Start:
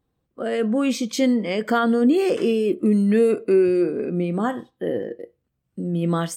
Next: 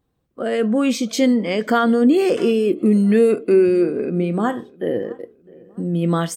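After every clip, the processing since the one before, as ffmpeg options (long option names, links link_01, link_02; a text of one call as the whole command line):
ffmpeg -i in.wav -filter_complex "[0:a]asplit=2[link_01][link_02];[link_02]adelay=658,lowpass=frequency=2100:poles=1,volume=-23.5dB,asplit=2[link_03][link_04];[link_04]adelay=658,lowpass=frequency=2100:poles=1,volume=0.43,asplit=2[link_05][link_06];[link_06]adelay=658,lowpass=frequency=2100:poles=1,volume=0.43[link_07];[link_01][link_03][link_05][link_07]amix=inputs=4:normalize=0,volume=3dB" out.wav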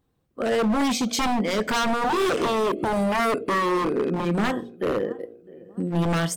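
ffmpeg -i in.wav -af "aeval=exprs='0.141*(abs(mod(val(0)/0.141+3,4)-2)-1)':channel_layout=same,bandreject=frequency=59.01:width_type=h:width=4,bandreject=frequency=118.02:width_type=h:width=4,bandreject=frequency=177.03:width_type=h:width=4,bandreject=frequency=236.04:width_type=h:width=4,bandreject=frequency=295.05:width_type=h:width=4,bandreject=frequency=354.06:width_type=h:width=4,bandreject=frequency=413.07:width_type=h:width=4,bandreject=frequency=472.08:width_type=h:width=4,bandreject=frequency=531.09:width_type=h:width=4,bandreject=frequency=590.1:width_type=h:width=4,bandreject=frequency=649.11:width_type=h:width=4,bandreject=frequency=708.12:width_type=h:width=4,bandreject=frequency=767.13:width_type=h:width=4" out.wav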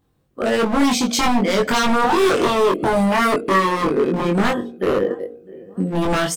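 ffmpeg -i in.wav -filter_complex "[0:a]asplit=2[link_01][link_02];[link_02]adelay=21,volume=-2.5dB[link_03];[link_01][link_03]amix=inputs=2:normalize=0,volume=4dB" out.wav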